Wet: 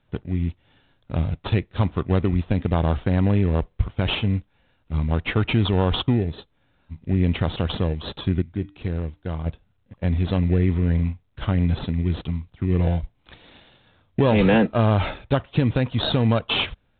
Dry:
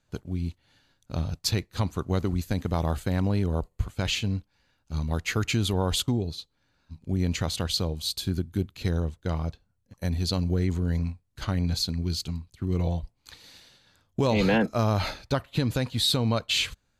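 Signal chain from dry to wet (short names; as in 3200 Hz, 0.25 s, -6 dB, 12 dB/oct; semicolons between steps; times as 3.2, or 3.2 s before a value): 8.42–9.46 resonator 300 Hz, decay 0.42 s, harmonics odd, mix 50%; in parallel at -7.5 dB: sample-and-hold 20×; on the sum: gain +3 dB; µ-law 64 kbps 8000 Hz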